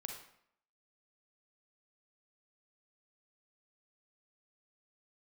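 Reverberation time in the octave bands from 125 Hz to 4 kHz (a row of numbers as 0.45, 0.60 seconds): 0.60, 0.70, 0.65, 0.70, 0.65, 0.55 seconds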